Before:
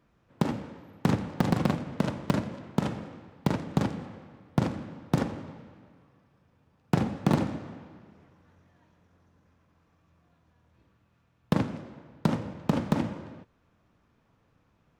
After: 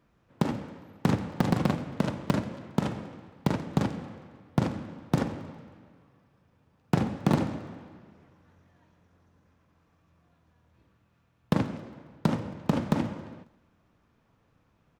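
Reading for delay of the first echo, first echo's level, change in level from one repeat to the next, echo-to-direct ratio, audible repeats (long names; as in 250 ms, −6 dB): 136 ms, −23.0 dB, −5.5 dB, −21.5 dB, 3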